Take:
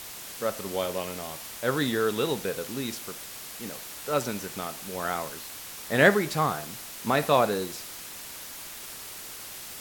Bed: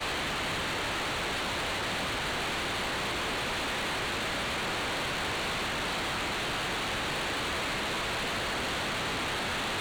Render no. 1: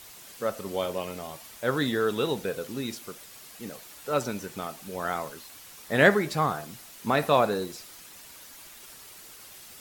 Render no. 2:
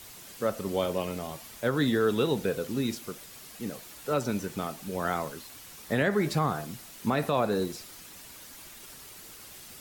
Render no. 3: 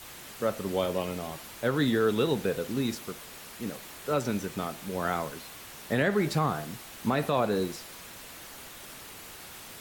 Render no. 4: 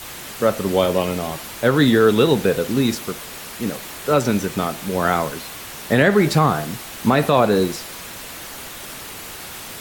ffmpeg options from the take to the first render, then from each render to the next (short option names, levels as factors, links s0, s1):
-af "afftdn=nr=8:nf=-41"
-filter_complex "[0:a]acrossover=split=370|1500|1900[s0][s1][s2][s3];[s0]acontrast=28[s4];[s4][s1][s2][s3]amix=inputs=4:normalize=0,alimiter=limit=0.168:level=0:latency=1:release=188"
-filter_complex "[1:a]volume=0.126[s0];[0:a][s0]amix=inputs=2:normalize=0"
-af "volume=3.55"